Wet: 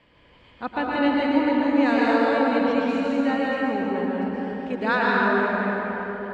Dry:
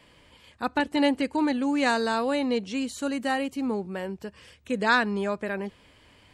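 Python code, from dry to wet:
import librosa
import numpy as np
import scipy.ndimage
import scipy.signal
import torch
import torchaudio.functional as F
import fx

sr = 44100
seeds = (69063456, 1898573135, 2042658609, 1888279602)

y = scipy.signal.sosfilt(scipy.signal.butter(2, 3100.0, 'lowpass', fs=sr, output='sos'), x)
y = fx.rev_plate(y, sr, seeds[0], rt60_s=4.1, hf_ratio=0.5, predelay_ms=100, drr_db=-5.5)
y = y * librosa.db_to_amplitude(-2.0)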